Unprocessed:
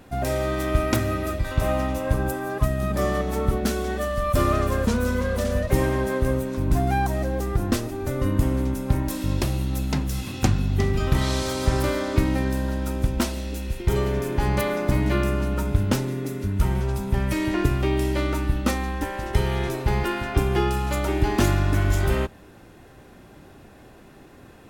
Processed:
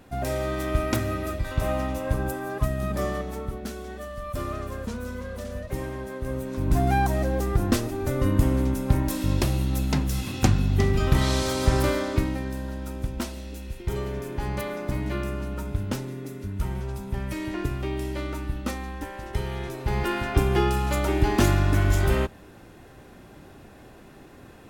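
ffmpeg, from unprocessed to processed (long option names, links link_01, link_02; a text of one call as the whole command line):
ffmpeg -i in.wav -af "volume=15dB,afade=type=out:start_time=2.92:duration=0.58:silence=0.421697,afade=type=in:start_time=6.2:duration=0.67:silence=0.281838,afade=type=out:start_time=11.88:duration=0.51:silence=0.421697,afade=type=in:start_time=19.76:duration=0.4:silence=0.446684" out.wav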